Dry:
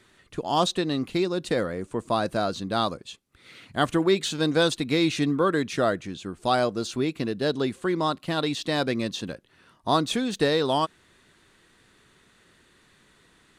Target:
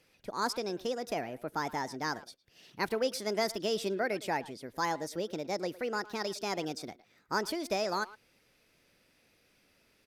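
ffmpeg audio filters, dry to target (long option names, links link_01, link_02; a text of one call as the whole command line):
ffmpeg -i in.wav -filter_complex "[0:a]asetrate=59535,aresample=44100,asplit=2[link_01][link_02];[link_02]adelay=110,highpass=300,lowpass=3400,asoftclip=type=hard:threshold=-18.5dB,volume=-17dB[link_03];[link_01][link_03]amix=inputs=2:normalize=0,volume=-9dB" out.wav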